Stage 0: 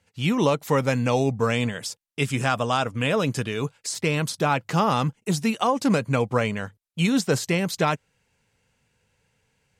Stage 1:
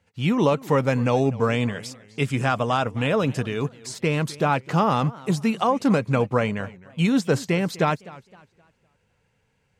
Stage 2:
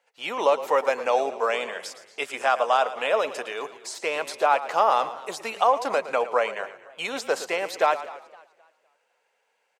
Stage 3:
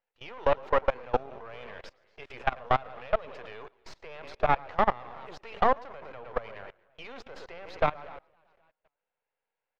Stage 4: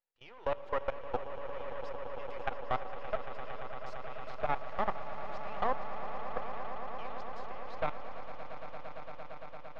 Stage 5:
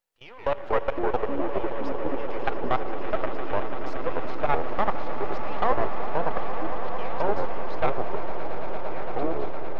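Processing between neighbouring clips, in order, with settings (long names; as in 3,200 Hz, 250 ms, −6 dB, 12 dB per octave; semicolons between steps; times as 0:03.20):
high-shelf EQ 3,400 Hz −9 dB; feedback echo with a swinging delay time 256 ms, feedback 34%, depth 196 cents, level −20 dB; level +1.5 dB
four-pole ladder high-pass 500 Hz, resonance 35%; echo with shifted repeats 113 ms, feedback 38%, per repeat −32 Hz, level −14 dB; level +7 dB
gain on one half-wave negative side −12 dB; high-frequency loss of the air 260 metres; output level in coarse steps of 23 dB; level +3 dB
tuned comb filter 190 Hz, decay 1.7 s, mix 50%; echo that builds up and dies away 114 ms, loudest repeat 8, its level −14 dB; level −3.5 dB
delay with pitch and tempo change per echo 119 ms, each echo −4 semitones, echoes 3; level +7.5 dB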